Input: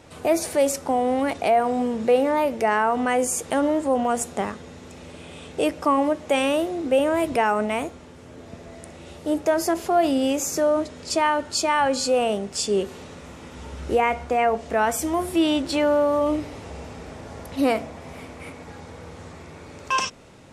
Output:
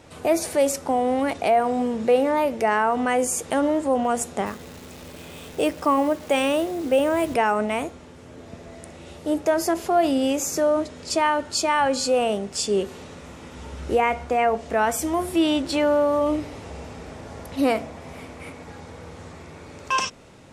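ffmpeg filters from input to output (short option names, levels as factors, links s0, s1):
-filter_complex "[0:a]asettb=1/sr,asplit=3[s0][s1][s2];[s0]atrim=end=4.464[s3];[s1]atrim=start=4.46:end=7.34,asetpts=PTS-STARTPTS,afade=t=in:d=0.004:c=qsin,afade=t=out:st=2.876:d=0.004:c=qsin,acrusher=bits=8:dc=4:mix=0:aa=0.000001[s4];[s2]atrim=start=7.336[s5];[s3][s4]acrossfade=d=0.004:c1=hsin:c2=qsin[s6];[s6][s5]acrossfade=d=0.004:c1=qsin:c2=hsin"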